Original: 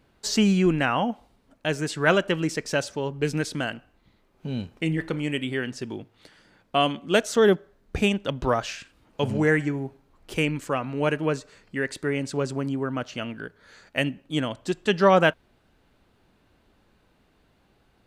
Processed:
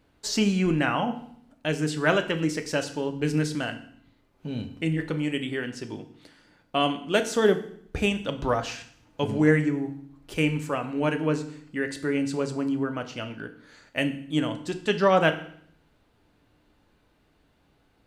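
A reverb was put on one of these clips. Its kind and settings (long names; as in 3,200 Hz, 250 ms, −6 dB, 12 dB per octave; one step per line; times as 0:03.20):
feedback delay network reverb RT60 0.62 s, low-frequency decay 1.4×, high-frequency decay 1×, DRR 7 dB
level −2.5 dB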